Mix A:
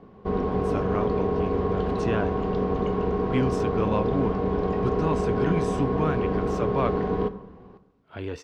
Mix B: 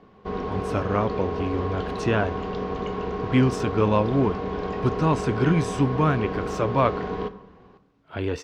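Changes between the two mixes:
speech +6.0 dB
background: add tilt shelving filter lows −5.5 dB, about 1,100 Hz

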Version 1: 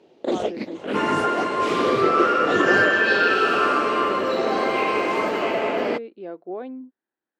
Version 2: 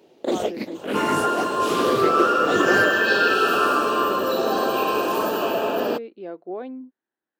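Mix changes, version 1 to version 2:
second sound: add Butterworth band-reject 2,100 Hz, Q 2.8
master: remove high-frequency loss of the air 77 metres

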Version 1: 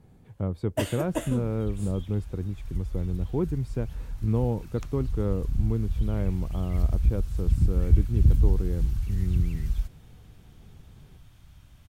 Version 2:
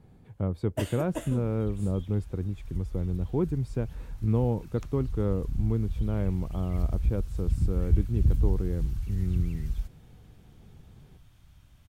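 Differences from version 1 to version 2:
first sound −5.0 dB
second sound −4.0 dB

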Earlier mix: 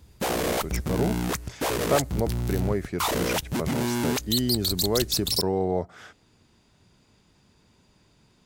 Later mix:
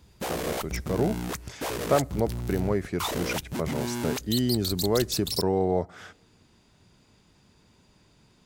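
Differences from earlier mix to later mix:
speech: send +10.0 dB
background −5.0 dB

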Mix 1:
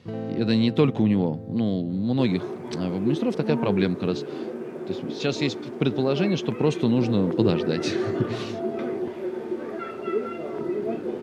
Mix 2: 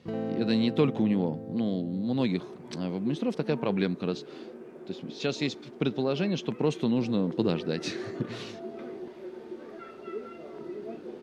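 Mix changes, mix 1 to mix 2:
speech −4.0 dB
second sound −11.0 dB
master: add parametric band 100 Hz −10.5 dB 0.49 octaves

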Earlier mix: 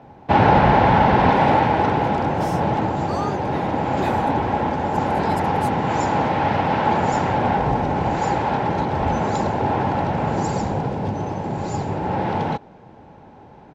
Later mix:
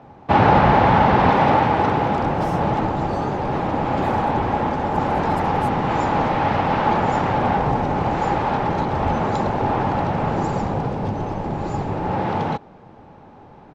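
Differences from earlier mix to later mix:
speech −6.5 dB
first sound: remove notch filter 1,200 Hz, Q 7.9
second sound: add spectral tilt −3 dB per octave

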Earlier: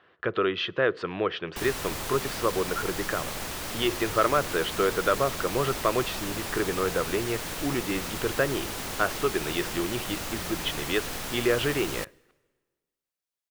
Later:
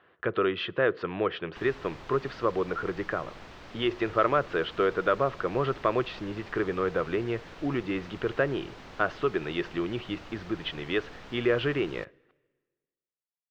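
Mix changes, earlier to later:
background −9.5 dB
master: add high-frequency loss of the air 200 metres

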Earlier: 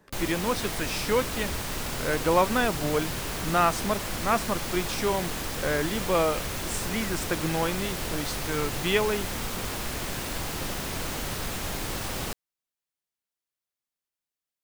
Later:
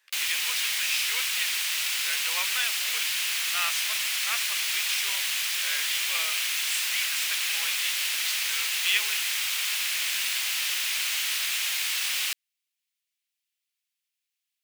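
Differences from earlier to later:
background +6.5 dB
master: add high-pass with resonance 2,500 Hz, resonance Q 1.8

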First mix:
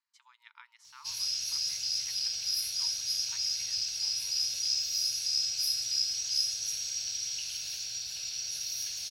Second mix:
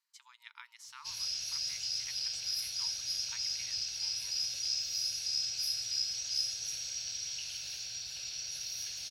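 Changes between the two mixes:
speech: add spectral tilt +3 dB per octave
background: add high-shelf EQ 5,500 Hz −8.5 dB

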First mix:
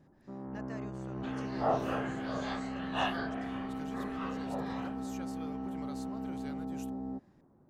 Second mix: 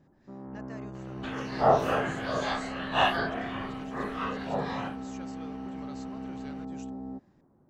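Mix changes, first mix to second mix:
speech: add linear-phase brick-wall low-pass 7,900 Hz
second sound +8.5 dB

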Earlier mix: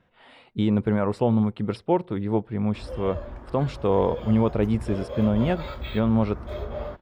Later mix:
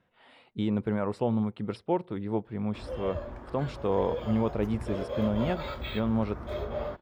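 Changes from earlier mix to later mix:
speech −5.5 dB
master: add low-shelf EQ 65 Hz −8.5 dB

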